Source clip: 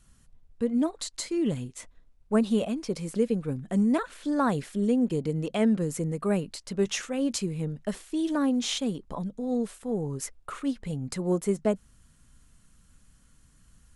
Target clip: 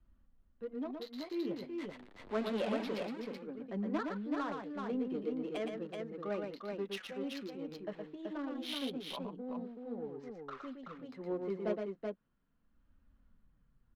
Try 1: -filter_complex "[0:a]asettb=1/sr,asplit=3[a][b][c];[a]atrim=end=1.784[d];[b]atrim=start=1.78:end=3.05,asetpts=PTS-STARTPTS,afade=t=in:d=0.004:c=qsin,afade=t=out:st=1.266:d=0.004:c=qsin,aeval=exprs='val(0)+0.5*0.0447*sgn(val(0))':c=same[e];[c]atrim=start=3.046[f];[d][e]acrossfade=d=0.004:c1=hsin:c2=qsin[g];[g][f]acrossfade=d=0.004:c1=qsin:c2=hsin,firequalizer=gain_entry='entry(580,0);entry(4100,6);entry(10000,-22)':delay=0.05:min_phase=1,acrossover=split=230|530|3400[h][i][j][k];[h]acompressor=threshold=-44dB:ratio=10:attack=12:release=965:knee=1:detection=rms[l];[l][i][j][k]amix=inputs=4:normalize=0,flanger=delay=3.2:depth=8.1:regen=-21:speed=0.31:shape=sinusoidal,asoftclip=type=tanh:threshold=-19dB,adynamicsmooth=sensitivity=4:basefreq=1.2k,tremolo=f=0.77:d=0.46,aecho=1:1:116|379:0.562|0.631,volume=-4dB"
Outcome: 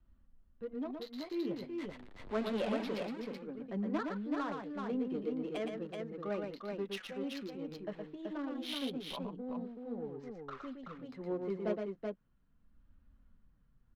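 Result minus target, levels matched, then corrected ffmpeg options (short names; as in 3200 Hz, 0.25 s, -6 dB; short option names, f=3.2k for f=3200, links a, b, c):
compressor: peak gain reduction -8.5 dB
-filter_complex "[0:a]asettb=1/sr,asplit=3[a][b][c];[a]atrim=end=1.784[d];[b]atrim=start=1.78:end=3.05,asetpts=PTS-STARTPTS,afade=t=in:d=0.004:c=qsin,afade=t=out:st=1.266:d=0.004:c=qsin,aeval=exprs='val(0)+0.5*0.0447*sgn(val(0))':c=same[e];[c]atrim=start=3.046[f];[d][e]acrossfade=d=0.004:c1=hsin:c2=qsin[g];[g][f]acrossfade=d=0.004:c1=qsin:c2=hsin,firequalizer=gain_entry='entry(580,0);entry(4100,6);entry(10000,-22)':delay=0.05:min_phase=1,acrossover=split=230|530|3400[h][i][j][k];[h]acompressor=threshold=-53.5dB:ratio=10:attack=12:release=965:knee=1:detection=rms[l];[l][i][j][k]amix=inputs=4:normalize=0,flanger=delay=3.2:depth=8.1:regen=-21:speed=0.31:shape=sinusoidal,asoftclip=type=tanh:threshold=-19dB,adynamicsmooth=sensitivity=4:basefreq=1.2k,tremolo=f=0.77:d=0.46,aecho=1:1:116|379:0.562|0.631,volume=-4dB"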